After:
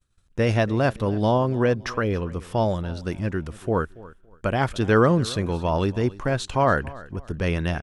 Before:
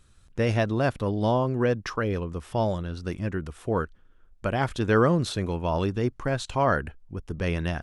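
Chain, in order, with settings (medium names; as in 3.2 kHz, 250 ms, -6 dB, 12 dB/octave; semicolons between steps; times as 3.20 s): feedback delay 282 ms, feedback 33%, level -20 dB; expander -46 dBFS; trim +3 dB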